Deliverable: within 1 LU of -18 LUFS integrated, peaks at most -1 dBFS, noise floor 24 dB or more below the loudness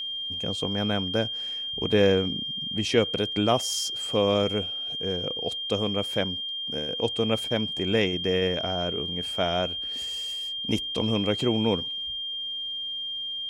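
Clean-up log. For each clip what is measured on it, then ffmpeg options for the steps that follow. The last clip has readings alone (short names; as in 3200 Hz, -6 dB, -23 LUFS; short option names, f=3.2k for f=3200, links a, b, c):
steady tone 3200 Hz; tone level -30 dBFS; loudness -26.5 LUFS; peak -8.5 dBFS; loudness target -18.0 LUFS
-> -af "bandreject=f=3.2k:w=30"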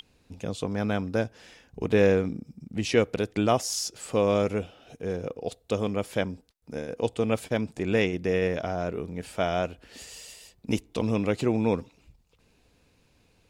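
steady tone none; loudness -28.0 LUFS; peak -9.0 dBFS; loudness target -18.0 LUFS
-> -af "volume=10dB,alimiter=limit=-1dB:level=0:latency=1"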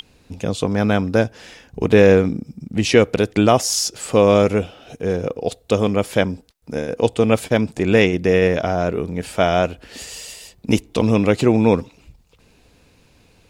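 loudness -18.0 LUFS; peak -1.0 dBFS; noise floor -55 dBFS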